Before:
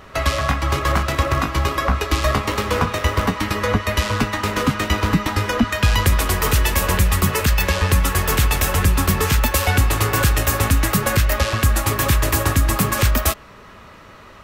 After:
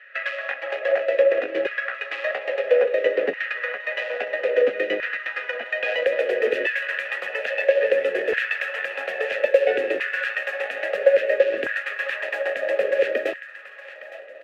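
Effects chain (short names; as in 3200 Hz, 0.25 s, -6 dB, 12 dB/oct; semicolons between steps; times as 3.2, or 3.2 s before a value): added harmonics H 7 -24 dB, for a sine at -4.5 dBFS; vowel filter e; tone controls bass -4 dB, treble -13 dB; notch 920 Hz, Q 5.8; in parallel at +1 dB: compressor, threshold -42 dBFS, peak gain reduction 16.5 dB; on the sum: low shelf 120 Hz +5.5 dB; on a send: feedback echo 0.863 s, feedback 47%, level -14 dB; on the sum: LFO high-pass saw down 0.6 Hz 320–1600 Hz; gain +6 dB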